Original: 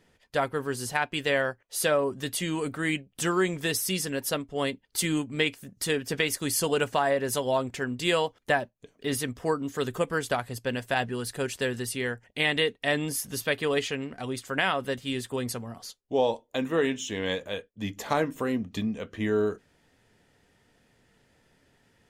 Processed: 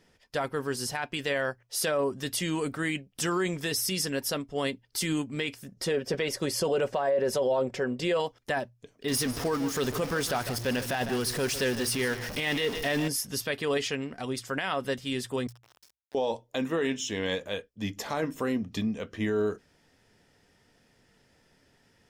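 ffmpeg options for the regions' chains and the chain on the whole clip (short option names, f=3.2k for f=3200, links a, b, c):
-filter_complex "[0:a]asettb=1/sr,asplit=3[a][b][c];[a]atrim=end=5.744[d];[b]atrim=start=5.74:end=8.2,asetpts=PTS-STARTPTS,afade=t=in:d=0.004:c=qsin,afade=t=out:st=2.456:d=0.004:c=qsin,lowpass=f=3.7k:p=1,equalizer=f=530:w=1.8:g=11,aecho=1:1:5.3:0.31,atrim=end_sample=108486[e];[c]atrim=start=8.196[f];[d][e]acrossfade=d=0.004:c1=hsin:c2=qsin[g];[g][f]acrossfade=d=0.004:c1=qsin:c2=hsin,asettb=1/sr,asplit=3[h][i][j];[h]atrim=end=9.084[k];[i]atrim=start=9.08:end=13.08,asetpts=PTS-STARTPTS,afade=t=in:d=0.004:c=qsin,afade=t=out:st=3.996:d=0.004:c=qsin,aeval=exprs='val(0)+0.5*0.0266*sgn(val(0))':c=same,bandreject=f=7.6k:w=12,aecho=1:1:152:0.2,atrim=end_sample=176400[l];[j]atrim=start=13.076[m];[k][l]acrossfade=d=0.004:c1=hsin:c2=qsin[n];[n][m]acrossfade=d=0.004:c1=qsin:c2=hsin,asettb=1/sr,asplit=3[o][p][q];[o]atrim=end=15.474[r];[p]atrim=start=15.47:end=16.15,asetpts=PTS-STARTPTS,afade=t=in:d=0.004:c=qsin,afade=t=out:st=0.676:d=0.004:c=qsin,highpass=f=640:w=0.5412,highpass=f=640:w=1.3066,acompressor=threshold=-50dB:ratio=12:attack=3.2:release=140:knee=1:detection=peak,aeval=exprs='val(0)*gte(abs(val(0)),0.00447)':c=same[s];[q]atrim=start=16.146[t];[r][s]acrossfade=d=0.004:c1=hsin:c2=qsin[u];[u][t]acrossfade=d=0.004:c1=qsin:c2=hsin,equalizer=f=5.3k:t=o:w=0.25:g=8,bandreject=f=60:t=h:w=6,bandreject=f=120:t=h:w=6,alimiter=limit=-19.5dB:level=0:latency=1:release=13"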